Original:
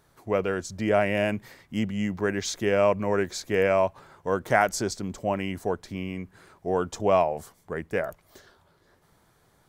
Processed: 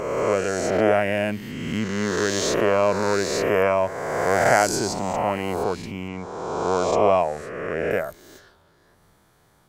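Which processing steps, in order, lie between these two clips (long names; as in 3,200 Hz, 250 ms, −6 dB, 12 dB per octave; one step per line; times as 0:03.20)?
peak hold with a rise ahead of every peak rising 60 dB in 1.88 s
0:06.08–0:07.91: low-pass filter 6,800 Hz 12 dB per octave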